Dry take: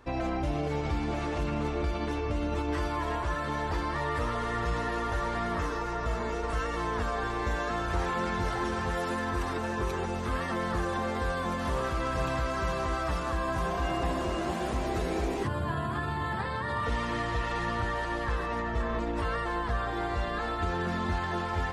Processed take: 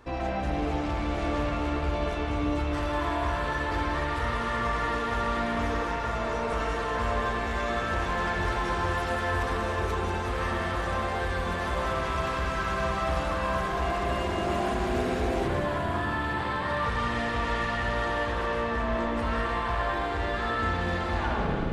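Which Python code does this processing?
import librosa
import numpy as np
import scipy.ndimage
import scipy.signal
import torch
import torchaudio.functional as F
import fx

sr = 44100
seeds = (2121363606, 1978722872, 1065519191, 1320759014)

p1 = fx.tape_stop_end(x, sr, length_s=0.57)
p2 = 10.0 ** (-28.5 / 20.0) * np.tanh(p1 / 10.0 ** (-28.5 / 20.0))
p3 = p2 + fx.echo_wet_highpass(p2, sr, ms=187, feedback_pct=70, hz=2500.0, wet_db=-7.0, dry=0)
p4 = fx.rev_spring(p3, sr, rt60_s=2.1, pass_ms=(44, 56), chirp_ms=35, drr_db=-2.5)
y = p4 * 10.0 ** (1.5 / 20.0)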